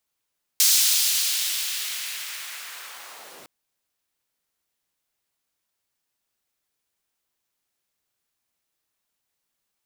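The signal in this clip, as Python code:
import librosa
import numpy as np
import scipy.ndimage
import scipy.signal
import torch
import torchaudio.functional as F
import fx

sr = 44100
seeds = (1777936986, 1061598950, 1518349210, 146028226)

y = fx.riser_noise(sr, seeds[0], length_s=2.86, colour='pink', kind='highpass', start_hz=4900.0, end_hz=260.0, q=1.1, swell_db=-32.5, law='linear')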